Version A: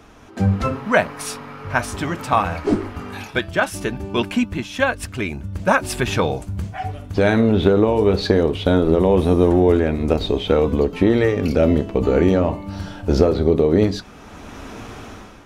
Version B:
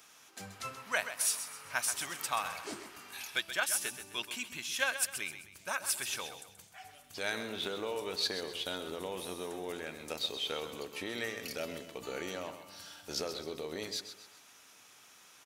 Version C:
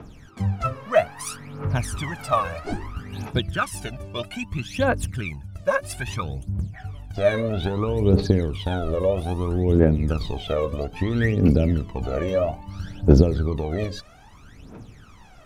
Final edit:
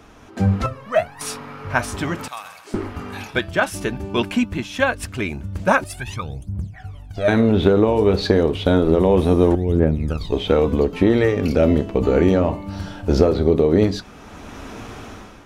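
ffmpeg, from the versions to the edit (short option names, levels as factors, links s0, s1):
-filter_complex "[2:a]asplit=3[s0][s1][s2];[0:a]asplit=5[s3][s4][s5][s6][s7];[s3]atrim=end=0.662[s8];[s0]atrim=start=0.658:end=1.212[s9];[s4]atrim=start=1.208:end=2.282[s10];[1:a]atrim=start=2.278:end=2.742[s11];[s5]atrim=start=2.738:end=5.842[s12];[s1]atrim=start=5.838:end=7.282[s13];[s6]atrim=start=7.278:end=9.552[s14];[s2]atrim=start=9.548:end=10.322[s15];[s7]atrim=start=10.318[s16];[s8][s9]acrossfade=d=0.004:c1=hsin:c2=hsin[s17];[s17][s10]acrossfade=d=0.004:c1=hsin:c2=hsin[s18];[s18][s11]acrossfade=d=0.004:c1=hsin:c2=hsin[s19];[s19][s12]acrossfade=d=0.004:c1=hsin:c2=hsin[s20];[s20][s13]acrossfade=d=0.004:c1=hsin:c2=hsin[s21];[s21][s14]acrossfade=d=0.004:c1=hsin:c2=hsin[s22];[s22][s15]acrossfade=d=0.004:c1=hsin:c2=hsin[s23];[s23][s16]acrossfade=d=0.004:c1=hsin:c2=hsin"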